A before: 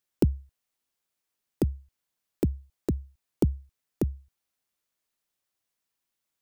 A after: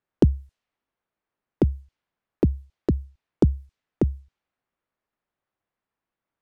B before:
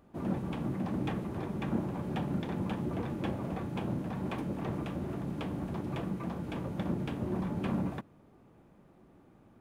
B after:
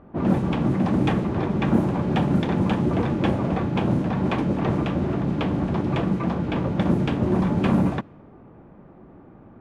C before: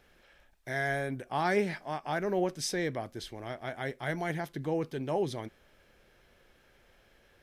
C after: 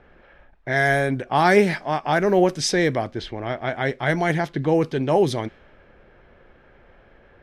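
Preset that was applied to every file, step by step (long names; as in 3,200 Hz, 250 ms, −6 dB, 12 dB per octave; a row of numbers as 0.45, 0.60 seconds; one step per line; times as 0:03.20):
low-pass that shuts in the quiet parts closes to 1,600 Hz, open at −26.5 dBFS
normalise the peak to −6 dBFS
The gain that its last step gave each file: +5.5, +12.5, +12.0 decibels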